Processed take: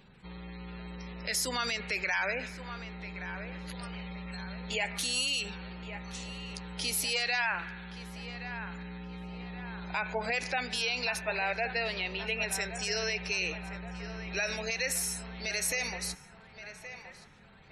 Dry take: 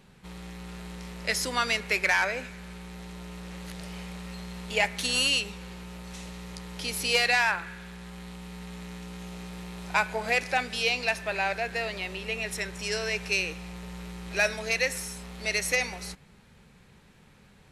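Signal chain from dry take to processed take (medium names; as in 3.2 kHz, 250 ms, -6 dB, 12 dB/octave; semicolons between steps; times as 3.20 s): spectral gate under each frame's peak -25 dB strong; treble shelf 4.2 kHz +9.5 dB; peak limiter -19.5 dBFS, peak gain reduction 9 dB; band-passed feedback delay 1123 ms, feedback 57%, band-pass 1.1 kHz, level -9 dB; trim -2 dB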